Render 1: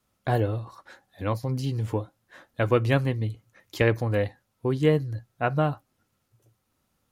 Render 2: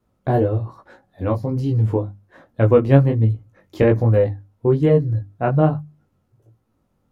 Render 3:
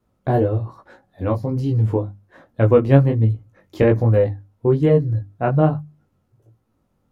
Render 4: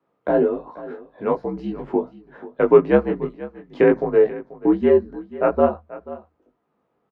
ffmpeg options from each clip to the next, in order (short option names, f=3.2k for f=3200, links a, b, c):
-af "flanger=delay=17.5:depth=4.4:speed=1.2,tiltshelf=f=1.3k:g=9,bandreject=f=50:t=h:w=6,bandreject=f=100:t=h:w=6,bandreject=f=150:t=h:w=6,bandreject=f=200:t=h:w=6,bandreject=f=250:t=h:w=6,bandreject=f=300:t=h:w=6,volume=4dB"
-af anull
-af "afreqshift=-70,highpass=300,lowpass=2.3k,aecho=1:1:486:0.141,volume=3.5dB"